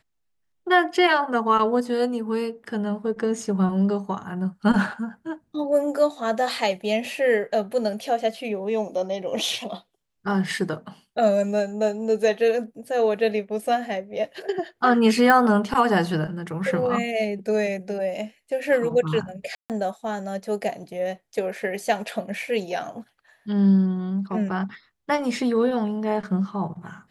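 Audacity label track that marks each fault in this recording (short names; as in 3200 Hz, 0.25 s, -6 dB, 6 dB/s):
15.300000	15.300000	pop -7 dBFS
19.550000	19.700000	gap 0.148 s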